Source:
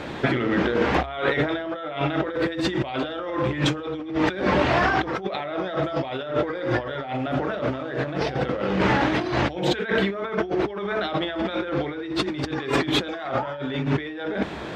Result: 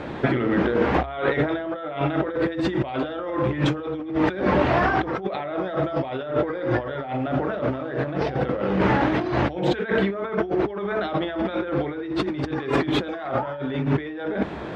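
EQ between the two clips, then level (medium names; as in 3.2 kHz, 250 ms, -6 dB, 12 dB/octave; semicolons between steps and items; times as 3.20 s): treble shelf 2.8 kHz -12 dB; +1.5 dB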